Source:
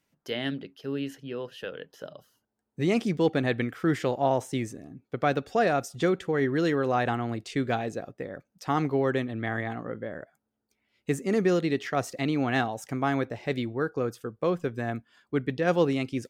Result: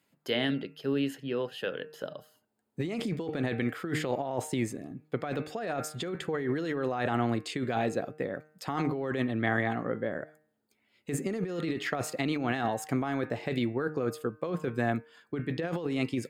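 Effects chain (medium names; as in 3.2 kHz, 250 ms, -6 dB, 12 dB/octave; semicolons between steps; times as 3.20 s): high-pass 110 Hz; band-stop 5.8 kHz, Q 5.3; de-hum 153.5 Hz, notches 18; compressor with a negative ratio -30 dBFS, ratio -1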